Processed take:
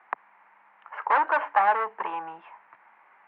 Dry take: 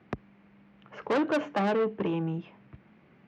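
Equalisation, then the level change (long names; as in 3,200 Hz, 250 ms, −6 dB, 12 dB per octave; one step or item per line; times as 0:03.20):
high-pass with resonance 910 Hz, resonance Q 4.7
low-pass with resonance 1,900 Hz, resonance Q 2
0.0 dB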